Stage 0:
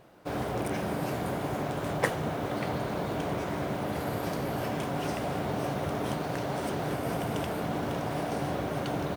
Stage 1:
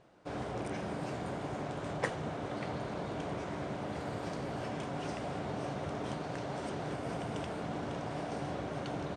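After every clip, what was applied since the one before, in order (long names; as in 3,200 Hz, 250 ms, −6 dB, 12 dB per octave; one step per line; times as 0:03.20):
Butterworth low-pass 8,700 Hz 36 dB per octave
level −6.5 dB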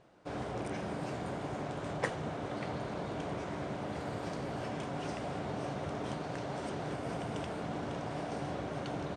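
no processing that can be heard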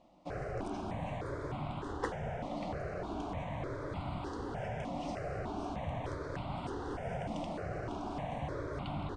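sub-octave generator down 1 octave, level −3 dB
high-frequency loss of the air 73 metres
step-sequenced phaser 3.3 Hz 420–1,700 Hz
level +2 dB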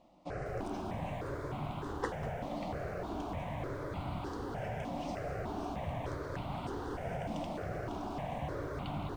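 feedback echo at a low word length 194 ms, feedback 35%, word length 9 bits, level −13 dB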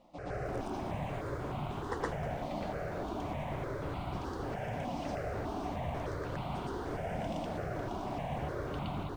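backwards echo 118 ms −3.5 dB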